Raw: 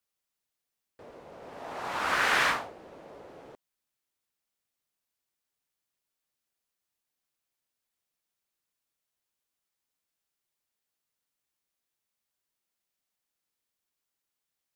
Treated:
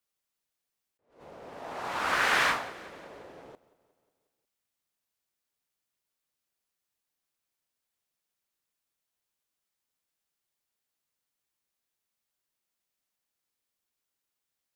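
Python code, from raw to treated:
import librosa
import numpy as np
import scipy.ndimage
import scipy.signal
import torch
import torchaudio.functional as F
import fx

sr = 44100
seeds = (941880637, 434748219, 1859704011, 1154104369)

y = fx.echo_feedback(x, sr, ms=180, feedback_pct=57, wet_db=-19)
y = fx.attack_slew(y, sr, db_per_s=140.0)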